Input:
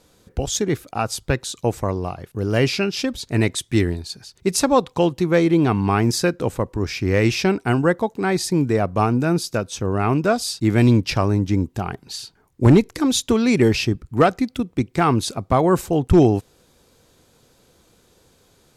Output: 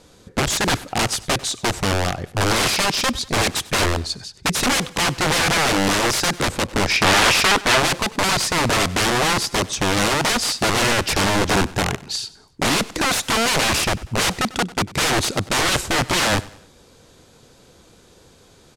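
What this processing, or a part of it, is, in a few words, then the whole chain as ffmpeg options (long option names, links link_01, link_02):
overflowing digital effects unit: -filter_complex "[0:a]aeval=exprs='(mod(9.44*val(0)+1,2)-1)/9.44':channel_layout=same,lowpass=9500,asettb=1/sr,asplit=3[link_01][link_02][link_03];[link_01]atrim=end=6.894[link_04];[link_02]atrim=start=6.89:end=7.8,asetpts=PTS-STARTPTS,afade=type=in:duration=0.004:curve=qsin,afade=type=out:start_time=0.906:duration=0.004:curve=qsin,equalizer=frequency=2000:width=0.43:gain=5.5[link_05];[link_03]atrim=start=7.796[link_06];[link_04][link_05]acrossfade=duration=0.004:curve1=hsin:curve2=qsin[link_07];[link_07][link_06]acrossfade=duration=0.004:curve1=qsin:curve2=hsin,aecho=1:1:96|192|288:0.1|0.042|0.0176,volume=6.5dB"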